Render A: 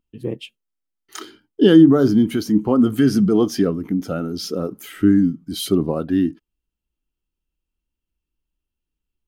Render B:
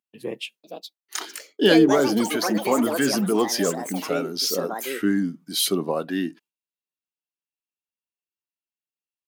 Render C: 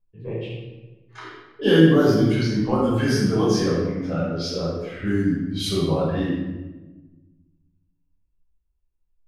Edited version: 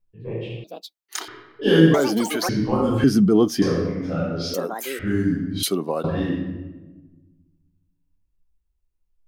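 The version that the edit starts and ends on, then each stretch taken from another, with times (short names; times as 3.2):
C
0.64–1.28 from B
1.94–2.49 from B
3.04–3.62 from A
4.54–4.99 from B
5.63–6.04 from B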